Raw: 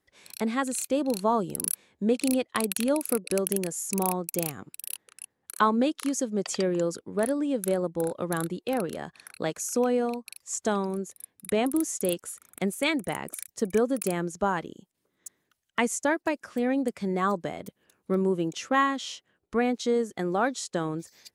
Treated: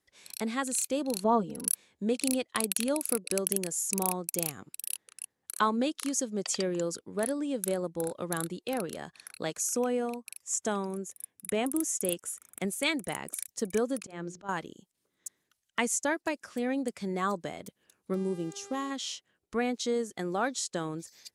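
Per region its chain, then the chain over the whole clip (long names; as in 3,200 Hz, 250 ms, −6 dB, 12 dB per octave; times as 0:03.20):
0:01.24–0:01.68: low-pass filter 1,400 Hz 6 dB per octave + comb filter 4.2 ms, depth 99%
0:09.71–0:12.65: high-pass filter 51 Hz + parametric band 4,300 Hz −9 dB 0.39 octaves
0:14.00–0:14.49: mains-hum notches 60/120/180/240/300/360/420/480/540 Hz + volume swells 207 ms + high-frequency loss of the air 100 metres
0:18.13–0:18.90: parametric band 1,800 Hz −15 dB 2.1 octaves + hum with harmonics 400 Hz, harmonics 27, −46 dBFS −8 dB per octave
whole clip: Bessel low-pass filter 11,000 Hz, order 2; high-shelf EQ 3,400 Hz +9.5 dB; level −5 dB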